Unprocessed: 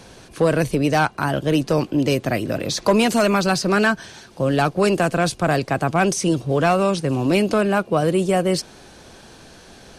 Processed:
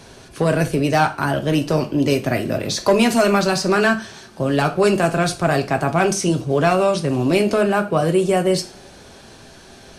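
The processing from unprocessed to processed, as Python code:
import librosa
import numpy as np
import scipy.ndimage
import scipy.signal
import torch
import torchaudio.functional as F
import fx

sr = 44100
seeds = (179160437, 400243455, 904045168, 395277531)

y = fx.rev_double_slope(x, sr, seeds[0], early_s=0.32, late_s=2.2, knee_db=-28, drr_db=5.0)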